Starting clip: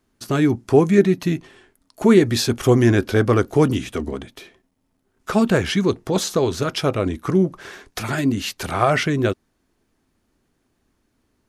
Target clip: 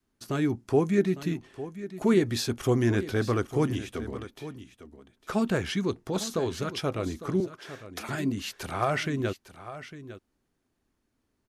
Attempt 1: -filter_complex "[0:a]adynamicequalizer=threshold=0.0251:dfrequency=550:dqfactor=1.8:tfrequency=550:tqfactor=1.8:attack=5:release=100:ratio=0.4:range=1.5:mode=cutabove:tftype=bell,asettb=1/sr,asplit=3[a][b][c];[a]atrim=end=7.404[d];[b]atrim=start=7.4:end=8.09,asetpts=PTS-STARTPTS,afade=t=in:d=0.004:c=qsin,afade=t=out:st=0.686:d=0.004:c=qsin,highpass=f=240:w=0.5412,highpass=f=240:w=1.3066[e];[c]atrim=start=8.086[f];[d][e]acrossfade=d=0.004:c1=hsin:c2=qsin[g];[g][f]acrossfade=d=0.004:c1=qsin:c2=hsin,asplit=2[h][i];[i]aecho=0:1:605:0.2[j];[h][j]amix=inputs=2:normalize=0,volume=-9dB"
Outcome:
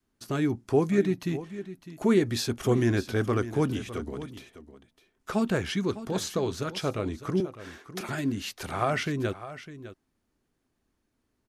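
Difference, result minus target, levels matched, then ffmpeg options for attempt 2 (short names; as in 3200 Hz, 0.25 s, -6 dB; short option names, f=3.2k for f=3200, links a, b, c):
echo 0.249 s early
-filter_complex "[0:a]adynamicequalizer=threshold=0.0251:dfrequency=550:dqfactor=1.8:tfrequency=550:tqfactor=1.8:attack=5:release=100:ratio=0.4:range=1.5:mode=cutabove:tftype=bell,asettb=1/sr,asplit=3[a][b][c];[a]atrim=end=7.404[d];[b]atrim=start=7.4:end=8.09,asetpts=PTS-STARTPTS,afade=t=in:d=0.004:c=qsin,afade=t=out:st=0.686:d=0.004:c=qsin,highpass=f=240:w=0.5412,highpass=f=240:w=1.3066[e];[c]atrim=start=8.086[f];[d][e]acrossfade=d=0.004:c1=hsin:c2=qsin[g];[g][f]acrossfade=d=0.004:c1=qsin:c2=hsin,asplit=2[h][i];[i]aecho=0:1:854:0.2[j];[h][j]amix=inputs=2:normalize=0,volume=-9dB"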